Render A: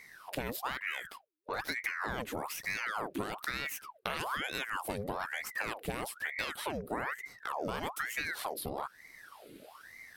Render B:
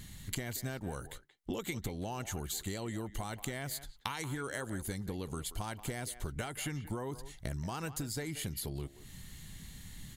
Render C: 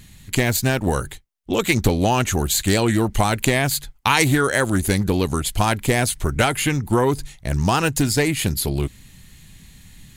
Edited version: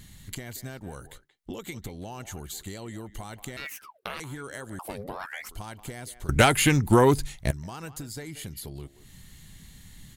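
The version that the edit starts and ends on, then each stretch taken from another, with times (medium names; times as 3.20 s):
B
3.57–4.20 s: from A
4.79–5.49 s: from A
6.29–7.51 s: from C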